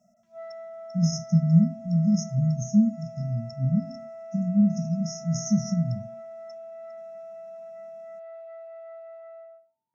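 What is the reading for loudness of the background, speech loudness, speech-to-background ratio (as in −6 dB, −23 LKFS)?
−42.0 LKFS, −25.0 LKFS, 17.0 dB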